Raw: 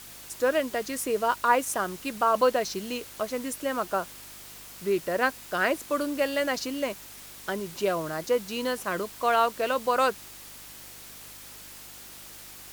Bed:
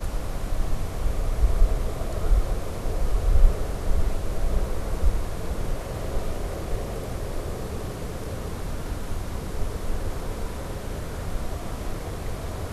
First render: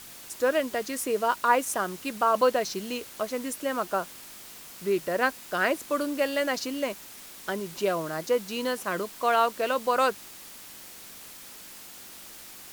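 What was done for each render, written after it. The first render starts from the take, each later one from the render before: de-hum 50 Hz, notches 3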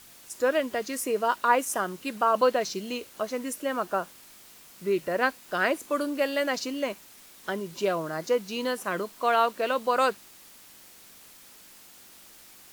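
noise print and reduce 6 dB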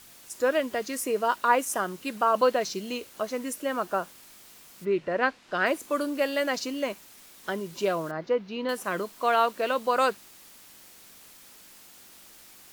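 4.84–5.65 LPF 2900 Hz -> 5300 Hz; 8.11–8.69 air absorption 280 m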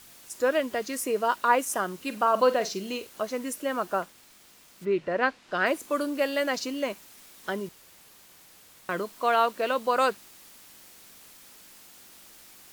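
1.96–3.07 flutter echo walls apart 8.1 m, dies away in 0.21 s; 4.02–4.85 self-modulated delay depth 0.15 ms; 7.69–8.89 room tone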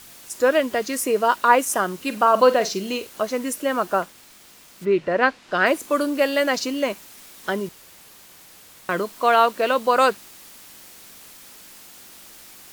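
gain +6.5 dB

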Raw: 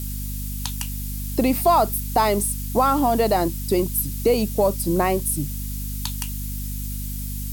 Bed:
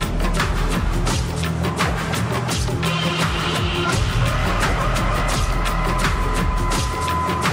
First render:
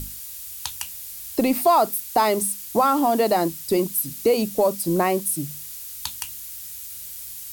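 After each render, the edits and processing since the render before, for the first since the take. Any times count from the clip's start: notches 50/100/150/200/250 Hz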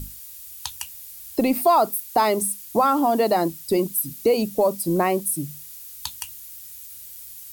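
denoiser 6 dB, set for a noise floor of -37 dBFS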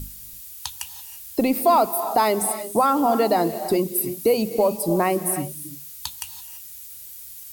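non-linear reverb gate 0.36 s rising, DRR 10.5 dB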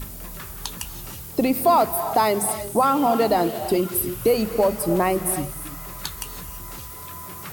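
add bed -19 dB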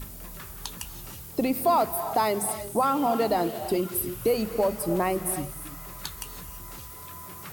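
gain -5 dB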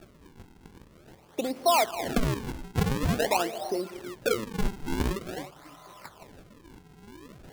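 band-pass 760 Hz, Q 0.84; decimation with a swept rate 42×, swing 160% 0.47 Hz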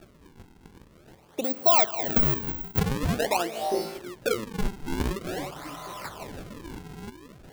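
1.44–2.79 careless resampling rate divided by 2×, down filtered, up zero stuff; 3.5–3.98 flutter echo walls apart 3.1 m, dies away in 0.56 s; 5.24–7.1 sample leveller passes 3

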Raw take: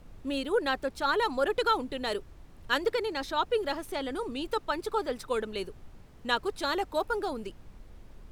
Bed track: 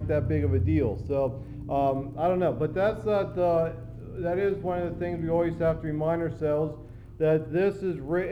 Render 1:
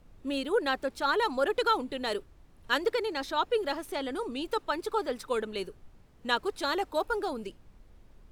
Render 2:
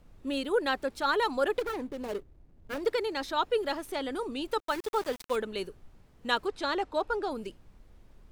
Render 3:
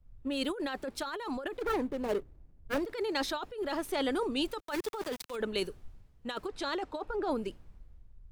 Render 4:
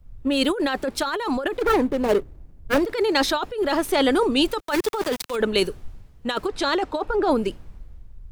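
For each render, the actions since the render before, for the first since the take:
noise print and reduce 6 dB
1.59–2.83 median filter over 41 samples; 4.6–5.36 sample gate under -37.5 dBFS; 6.46–7.31 air absorption 66 m
negative-ratio compressor -33 dBFS, ratio -1; three-band expander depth 70%
gain +12 dB

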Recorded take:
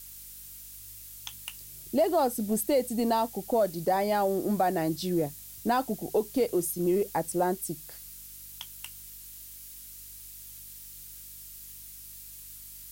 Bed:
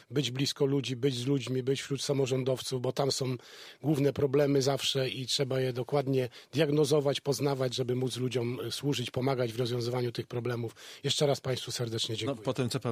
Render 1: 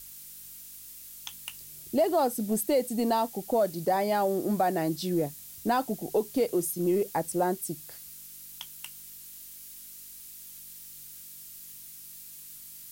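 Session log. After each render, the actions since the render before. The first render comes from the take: de-hum 50 Hz, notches 2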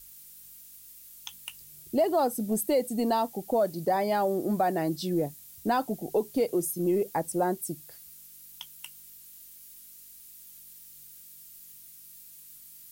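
denoiser 6 dB, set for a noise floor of -47 dBFS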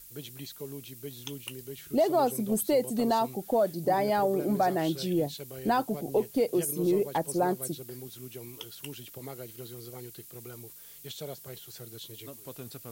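add bed -13 dB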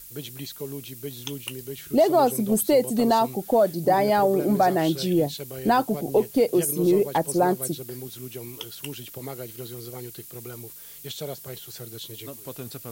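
gain +6 dB

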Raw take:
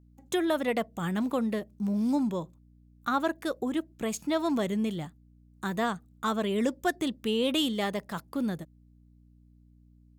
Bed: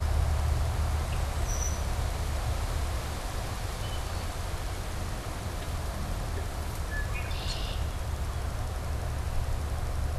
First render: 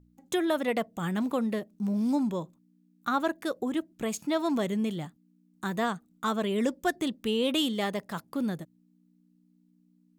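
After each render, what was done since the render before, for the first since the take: de-hum 60 Hz, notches 2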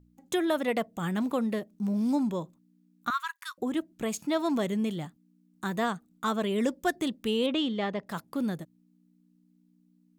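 3.1–3.58 brick-wall FIR high-pass 950 Hz; 7.46–8.07 air absorption 180 m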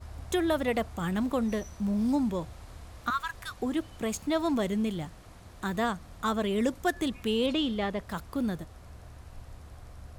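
add bed -15.5 dB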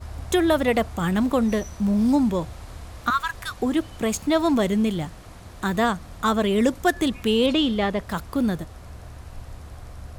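gain +7.5 dB

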